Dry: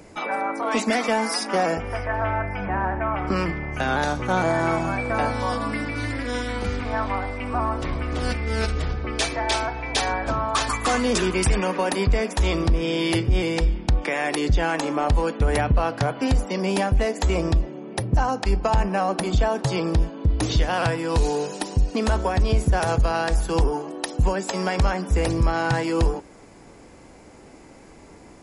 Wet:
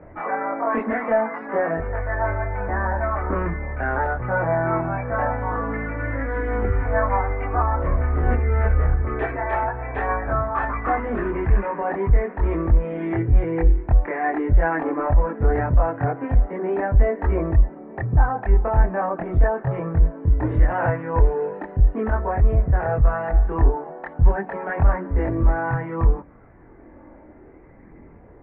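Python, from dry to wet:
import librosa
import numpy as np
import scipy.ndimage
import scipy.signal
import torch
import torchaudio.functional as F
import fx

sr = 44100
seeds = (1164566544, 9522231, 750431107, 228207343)

y = scipy.signal.sosfilt(scipy.signal.ellip(4, 1.0, 70, 1900.0, 'lowpass', fs=sr, output='sos'), x)
y = fx.rider(y, sr, range_db=10, speed_s=2.0)
y = fx.chorus_voices(y, sr, voices=6, hz=0.28, base_ms=24, depth_ms=1.8, mix_pct=55)
y = F.gain(torch.from_numpy(y), 3.0).numpy()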